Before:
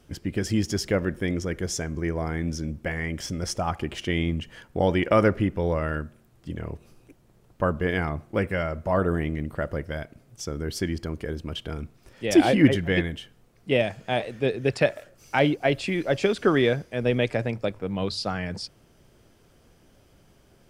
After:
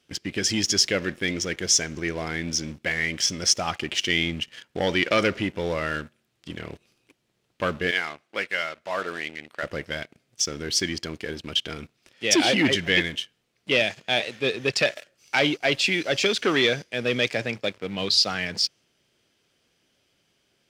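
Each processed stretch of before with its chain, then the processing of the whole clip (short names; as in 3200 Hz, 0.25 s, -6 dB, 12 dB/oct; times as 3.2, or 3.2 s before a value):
7.91–9.63 HPF 890 Hz 6 dB/oct + high shelf 10000 Hz -9.5 dB
whole clip: dynamic EQ 6000 Hz, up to +6 dB, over -51 dBFS, Q 1.8; sample leveller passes 2; weighting filter D; gain -8 dB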